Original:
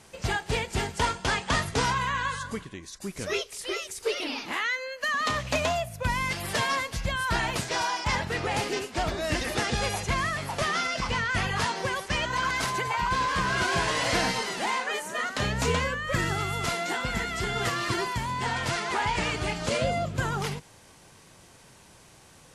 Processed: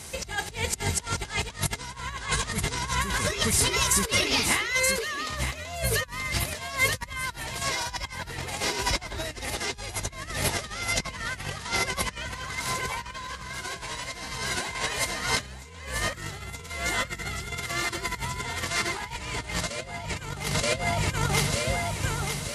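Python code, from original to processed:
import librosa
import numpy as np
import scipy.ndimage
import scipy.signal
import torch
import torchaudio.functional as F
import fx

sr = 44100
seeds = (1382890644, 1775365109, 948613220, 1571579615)

p1 = fx.peak_eq(x, sr, hz=64.0, db=10.5, octaves=1.4)
p2 = p1 + fx.echo_feedback(p1, sr, ms=927, feedback_pct=44, wet_db=-4, dry=0)
p3 = fx.over_compress(p2, sr, threshold_db=-31.0, ratio=-0.5)
p4 = fx.high_shelf(p3, sr, hz=4800.0, db=12.0)
y = fx.small_body(p4, sr, hz=(2100.0, 3900.0), ring_ms=45, db=9)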